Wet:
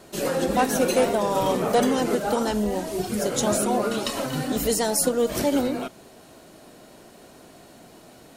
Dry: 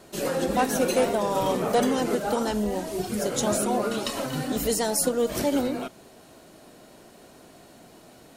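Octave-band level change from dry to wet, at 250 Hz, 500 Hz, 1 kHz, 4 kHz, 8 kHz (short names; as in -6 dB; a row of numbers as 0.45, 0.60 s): +2.0, +2.0, +2.0, +2.0, +2.0 dB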